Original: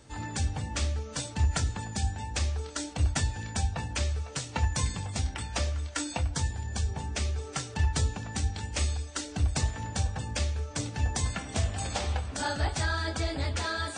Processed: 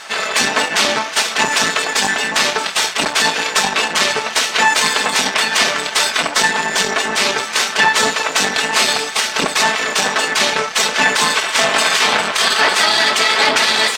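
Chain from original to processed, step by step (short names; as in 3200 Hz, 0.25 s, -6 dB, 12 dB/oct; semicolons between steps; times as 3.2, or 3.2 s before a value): spectral gate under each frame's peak -15 dB weak; comb 4.6 ms, depth 51%; half-wave rectifier; band-pass 1700 Hz, Q 0.51; maximiser +35.5 dB; gain -1 dB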